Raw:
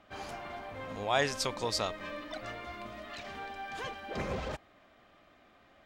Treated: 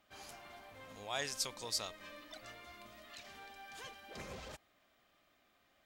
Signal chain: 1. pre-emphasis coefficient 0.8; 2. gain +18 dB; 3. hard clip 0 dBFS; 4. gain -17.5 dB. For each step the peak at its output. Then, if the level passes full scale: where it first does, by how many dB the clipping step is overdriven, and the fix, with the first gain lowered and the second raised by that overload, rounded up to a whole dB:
-22.0, -4.0, -4.0, -21.5 dBFS; no overload

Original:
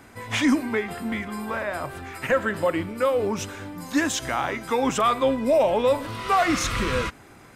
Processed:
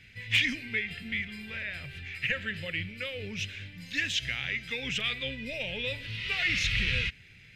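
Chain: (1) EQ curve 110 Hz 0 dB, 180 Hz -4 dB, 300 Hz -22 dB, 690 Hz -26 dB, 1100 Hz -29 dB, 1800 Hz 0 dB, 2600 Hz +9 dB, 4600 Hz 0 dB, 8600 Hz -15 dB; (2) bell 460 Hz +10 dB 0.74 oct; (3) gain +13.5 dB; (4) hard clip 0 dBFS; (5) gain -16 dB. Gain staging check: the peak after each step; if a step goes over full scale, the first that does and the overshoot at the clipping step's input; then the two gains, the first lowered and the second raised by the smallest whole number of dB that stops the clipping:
-9.0, -9.0, +4.5, 0.0, -16.0 dBFS; step 3, 4.5 dB; step 3 +8.5 dB, step 5 -11 dB

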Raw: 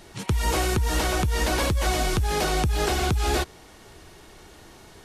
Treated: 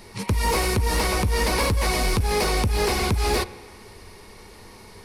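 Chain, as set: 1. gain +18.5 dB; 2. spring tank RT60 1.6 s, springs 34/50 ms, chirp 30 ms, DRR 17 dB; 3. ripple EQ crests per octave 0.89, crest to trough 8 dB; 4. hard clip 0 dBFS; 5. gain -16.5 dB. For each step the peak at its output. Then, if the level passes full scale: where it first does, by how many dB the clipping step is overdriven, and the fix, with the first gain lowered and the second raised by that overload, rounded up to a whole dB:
+5.0, +5.0, +7.0, 0.0, -16.5 dBFS; step 1, 7.0 dB; step 1 +11.5 dB, step 5 -9.5 dB

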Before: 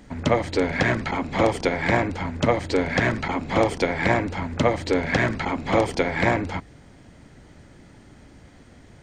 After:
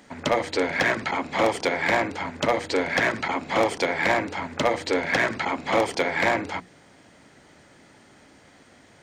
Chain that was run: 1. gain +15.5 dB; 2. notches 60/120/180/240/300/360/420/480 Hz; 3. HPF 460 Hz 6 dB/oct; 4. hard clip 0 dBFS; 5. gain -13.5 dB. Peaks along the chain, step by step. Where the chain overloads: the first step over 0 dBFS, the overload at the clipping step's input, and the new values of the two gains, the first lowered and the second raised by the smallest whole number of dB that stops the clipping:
+10.0, +9.5, +9.0, 0.0, -13.5 dBFS; step 1, 9.0 dB; step 1 +6.5 dB, step 5 -4.5 dB

